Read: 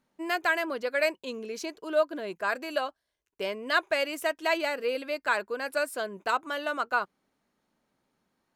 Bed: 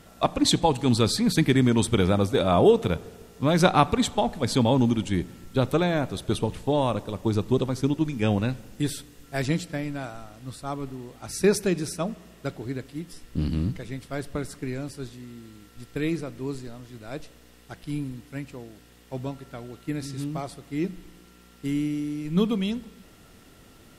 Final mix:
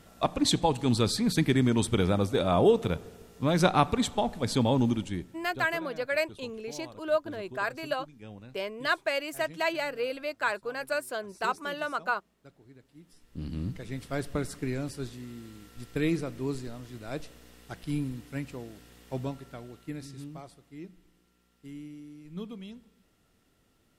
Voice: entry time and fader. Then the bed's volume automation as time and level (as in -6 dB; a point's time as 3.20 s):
5.15 s, -2.0 dB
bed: 4.93 s -4 dB
5.83 s -22.5 dB
12.74 s -22.5 dB
14.03 s -0.5 dB
19.13 s -0.5 dB
20.86 s -16.5 dB